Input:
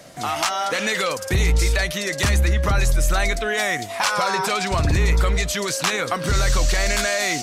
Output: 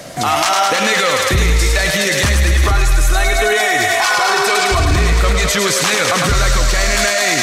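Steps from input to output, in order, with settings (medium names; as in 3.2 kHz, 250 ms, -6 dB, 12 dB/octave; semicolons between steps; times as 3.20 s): 2.53–4.94 s: comb 2.7 ms, depth 75%; thinning echo 105 ms, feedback 81%, high-pass 430 Hz, level -5.5 dB; loudness maximiser +16 dB; trim -4.5 dB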